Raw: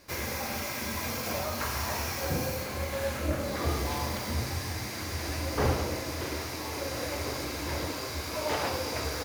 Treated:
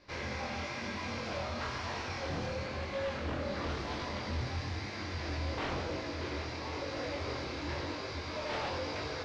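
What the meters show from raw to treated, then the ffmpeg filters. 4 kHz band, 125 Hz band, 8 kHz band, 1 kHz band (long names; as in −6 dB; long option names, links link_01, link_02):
−5.5 dB, −5.0 dB, −15.0 dB, −4.5 dB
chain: -af "aeval=exprs='0.0422*(abs(mod(val(0)/0.0422+3,4)-2)-1)':channel_layout=same,lowpass=frequency=4800:width=0.5412,lowpass=frequency=4800:width=1.3066,flanger=delay=20:depth=5.3:speed=1"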